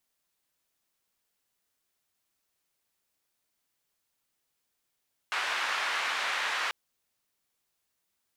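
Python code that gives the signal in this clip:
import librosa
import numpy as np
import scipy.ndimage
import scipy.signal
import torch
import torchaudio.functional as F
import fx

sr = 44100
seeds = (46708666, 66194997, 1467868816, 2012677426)

y = fx.band_noise(sr, seeds[0], length_s=1.39, low_hz=1100.0, high_hz=2000.0, level_db=-31.0)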